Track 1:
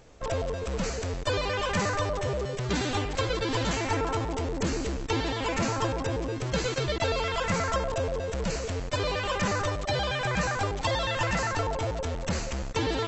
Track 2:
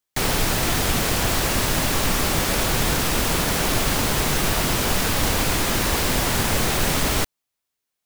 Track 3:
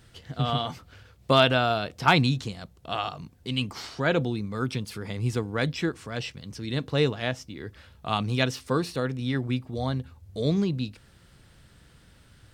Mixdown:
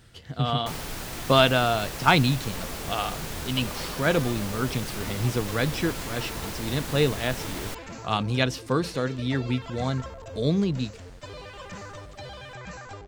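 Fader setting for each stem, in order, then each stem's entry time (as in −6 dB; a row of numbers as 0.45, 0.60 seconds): −12.5, −14.0, +1.0 decibels; 2.30, 0.50, 0.00 seconds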